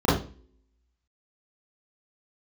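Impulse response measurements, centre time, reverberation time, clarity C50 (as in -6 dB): 48 ms, 0.40 s, 3.0 dB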